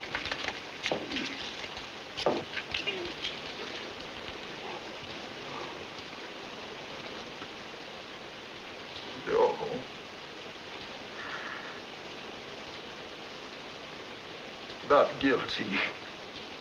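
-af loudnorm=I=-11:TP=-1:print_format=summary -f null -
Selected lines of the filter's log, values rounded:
Input Integrated:    -34.2 LUFS
Input True Peak:      -9.5 dBTP
Input LRA:             9.6 LU
Input Threshold:     -44.2 LUFS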